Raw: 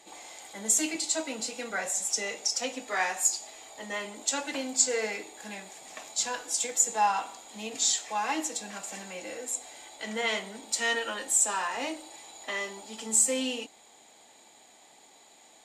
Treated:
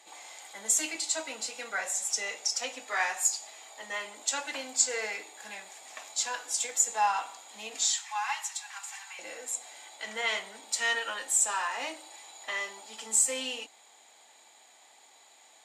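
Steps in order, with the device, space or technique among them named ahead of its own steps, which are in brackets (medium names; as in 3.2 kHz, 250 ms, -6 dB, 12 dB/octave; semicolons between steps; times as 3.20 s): 7.86–9.19 s: elliptic high-pass 830 Hz, stop band 50 dB; filter by subtraction (in parallel: low-pass 1.2 kHz 12 dB/octave + polarity flip); on the sum: trim -1.5 dB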